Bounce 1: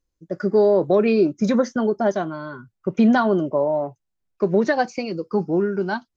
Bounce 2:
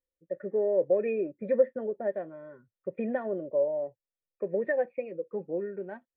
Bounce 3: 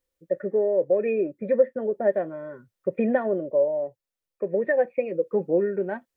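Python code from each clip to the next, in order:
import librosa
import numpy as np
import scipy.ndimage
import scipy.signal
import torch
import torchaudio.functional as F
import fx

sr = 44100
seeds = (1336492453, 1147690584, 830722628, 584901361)

y1 = fx.formant_cascade(x, sr, vowel='e')
y2 = fx.rider(y1, sr, range_db=4, speed_s=0.5)
y2 = y2 * 10.0 ** (6.5 / 20.0)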